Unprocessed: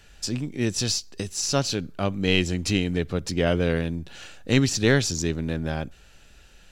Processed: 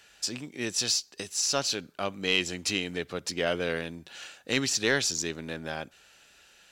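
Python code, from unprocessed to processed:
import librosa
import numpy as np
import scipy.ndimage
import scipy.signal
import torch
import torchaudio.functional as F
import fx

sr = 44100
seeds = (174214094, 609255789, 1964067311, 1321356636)

y = fx.highpass(x, sr, hz=730.0, slope=6)
y = 10.0 ** (-10.5 / 20.0) * np.tanh(y / 10.0 ** (-10.5 / 20.0))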